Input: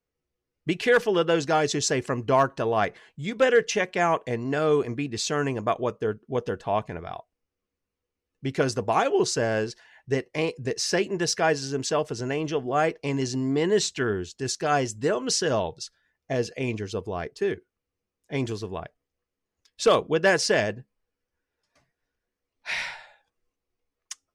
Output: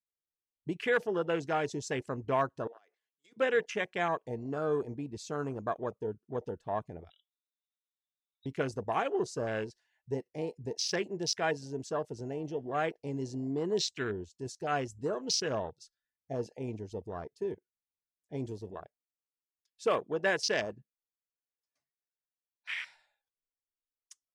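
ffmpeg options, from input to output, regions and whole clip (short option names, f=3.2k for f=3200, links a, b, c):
-filter_complex "[0:a]asettb=1/sr,asplit=3[a][b][c];[a]atrim=end=2.674[d];[b]atrim=start=2.67:end=3.37,asetpts=PTS-STARTPTS,afade=t=in:d=0.004:c=qsin,afade=t=out:st=0.696:d=0.004:c=qsin,highpass=f=330:w=0.5412,highpass=f=330:w=1.3066,agate=range=-16dB:threshold=-47dB:ratio=16:release=100:detection=peak,acompressor=threshold=-37dB:ratio=20:attack=3.2:release=140:knee=1:detection=peak[e];[c]atrim=start=3.366[f];[d][e]acrossfade=d=0.004:c1=hsin:c2=qsin[g];[g][f]acrossfade=d=0.004:c1=qsin:c2=hsin,asettb=1/sr,asplit=3[h][i][j];[h]atrim=end=7.104[k];[i]atrim=start=7.1:end=8.46,asetpts=PTS-STARTPTS,afade=t=in:d=0.004:c=qsin,afade=t=out:st=1.356:d=0.004:c=qsin,acompressor=threshold=-42dB:ratio=4:attack=3.2:release=140:knee=1:detection=peak,lowpass=f=3.4k:t=q:w=0.5098,lowpass=f=3.4k:t=q:w=0.6013,lowpass=f=3.4k:t=q:w=0.9,lowpass=f=3.4k:t=q:w=2.563,afreqshift=-4000,aecho=1:1:1.4:0.76,atrim=end_sample=59976[l];[j]atrim=start=8.456[m];[k][l]acrossfade=d=0.004:c1=hsin:c2=qsin[n];[n][m]acrossfade=d=0.004:c1=qsin:c2=hsin,asettb=1/sr,asplit=3[o][p][q];[o]atrim=end=18.714[r];[p]atrim=start=18.71:end=22.95,asetpts=PTS-STARTPTS,afade=t=in:d=0.004:c=qsin,afade=t=out:st=4.236:d=0.004:c=qsin,lowshelf=f=99:g=-12,asoftclip=type=hard:threshold=-11.5dB[s];[q]atrim=start=22.946[t];[r][s]acrossfade=d=0.004:c1=hsin:c2=qsin[u];[u][t]acrossfade=d=0.004:c1=qsin:c2=hsin,afwtdn=0.0316,highshelf=f=3.8k:g=11.5,volume=-9dB"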